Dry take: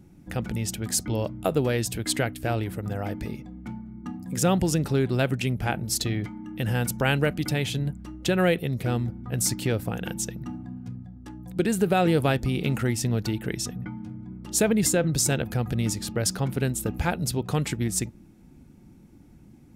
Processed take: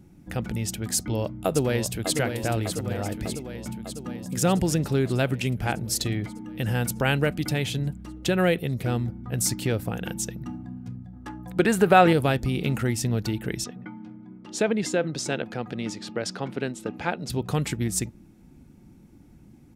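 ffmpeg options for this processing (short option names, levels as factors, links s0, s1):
-filter_complex "[0:a]asplit=2[s0][s1];[s1]afade=t=in:st=0.95:d=0.01,afade=t=out:st=2.14:d=0.01,aecho=0:1:600|1200|1800|2400|3000|3600|4200|4800|5400|6000|6600:0.421697|0.295188|0.206631|0.144642|0.101249|0.0708745|0.0496122|0.0347285|0.02431|0.017017|0.0119119[s2];[s0][s2]amix=inputs=2:normalize=0,asettb=1/sr,asplit=3[s3][s4][s5];[s3]atrim=end=11.134[s6];[s4]atrim=start=11.13:end=12.13,asetpts=PTS-STARTPTS,afade=t=in:d=0.004:c=qsin,afade=t=out:st=0.996:d=0.004:c=qsin,equalizer=f=1200:t=o:w=2.5:g=10.5[s7];[s5]atrim=start=12.126[s8];[s6][s7]acrossfade=d=0.004:c1=hsin:c2=qsin[s9];[s9][s8]acrossfade=d=0.004:c1=qsin:c2=hsin,asettb=1/sr,asplit=3[s10][s11][s12];[s10]atrim=end=13.644[s13];[s11]atrim=start=13.64:end=17.3,asetpts=PTS-STARTPTS,afade=t=in:d=0.004:c=qsin,afade=t=out:st=3.656:d=0.004:c=qsin,highpass=230,lowpass=4500[s14];[s12]atrim=start=17.296[s15];[s13][s14]acrossfade=d=0.004:c1=hsin:c2=qsin[s16];[s16][s15]acrossfade=d=0.004:c1=qsin:c2=hsin"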